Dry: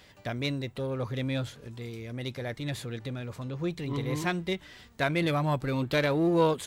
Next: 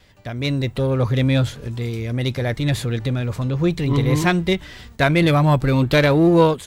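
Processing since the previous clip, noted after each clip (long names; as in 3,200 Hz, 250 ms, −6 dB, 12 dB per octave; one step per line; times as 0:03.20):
noise gate with hold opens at −47 dBFS
low-shelf EQ 99 Hz +11 dB
automatic gain control gain up to 11 dB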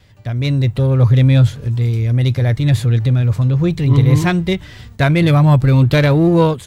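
parametric band 110 Hz +11.5 dB 1 octave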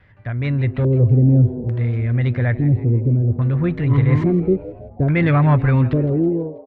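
fade-out on the ending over 0.93 s
auto-filter low-pass square 0.59 Hz 370–1,800 Hz
echo with shifted repeats 162 ms, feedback 44%, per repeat +120 Hz, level −17 dB
level −4 dB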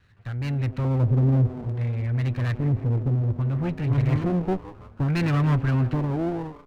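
lower of the sound and its delayed copy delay 0.71 ms
level −6.5 dB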